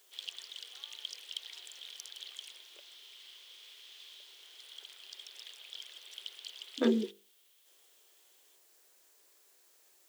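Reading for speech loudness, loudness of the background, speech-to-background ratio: -32.0 LUFS, -46.5 LUFS, 14.5 dB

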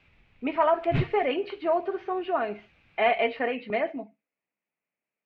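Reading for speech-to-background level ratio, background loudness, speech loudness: 4.5 dB, -32.0 LUFS, -27.5 LUFS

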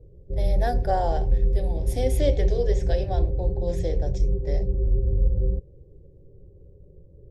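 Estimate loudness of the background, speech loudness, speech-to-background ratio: -26.5 LUFS, -30.5 LUFS, -4.0 dB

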